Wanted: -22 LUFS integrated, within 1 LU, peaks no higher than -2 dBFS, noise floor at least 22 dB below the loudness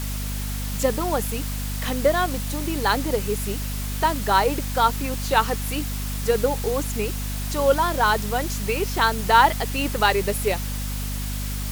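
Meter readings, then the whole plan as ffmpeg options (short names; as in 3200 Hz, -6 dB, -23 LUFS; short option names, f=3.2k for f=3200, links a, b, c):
hum 50 Hz; harmonics up to 250 Hz; hum level -26 dBFS; noise floor -28 dBFS; noise floor target -45 dBFS; loudness -23.0 LUFS; peak -4.5 dBFS; loudness target -22.0 LUFS
-> -af "bandreject=f=50:t=h:w=6,bandreject=f=100:t=h:w=6,bandreject=f=150:t=h:w=6,bandreject=f=200:t=h:w=6,bandreject=f=250:t=h:w=6"
-af "afftdn=nr=17:nf=-28"
-af "volume=1dB"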